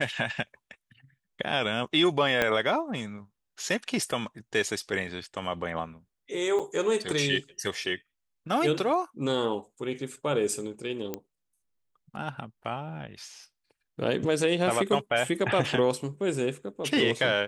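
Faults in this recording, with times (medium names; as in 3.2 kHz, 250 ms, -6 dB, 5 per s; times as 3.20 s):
2.42 s: pop -10 dBFS
6.59–6.60 s: dropout 6.2 ms
11.14 s: pop -17 dBFS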